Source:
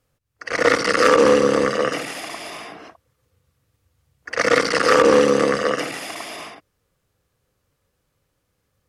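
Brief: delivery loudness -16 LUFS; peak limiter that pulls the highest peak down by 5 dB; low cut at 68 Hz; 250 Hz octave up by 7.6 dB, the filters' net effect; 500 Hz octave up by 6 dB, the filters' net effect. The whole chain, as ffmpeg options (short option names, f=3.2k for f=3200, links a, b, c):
-af "highpass=68,equalizer=f=250:t=o:g=8,equalizer=f=500:t=o:g=4.5,volume=-1.5dB,alimiter=limit=-3.5dB:level=0:latency=1"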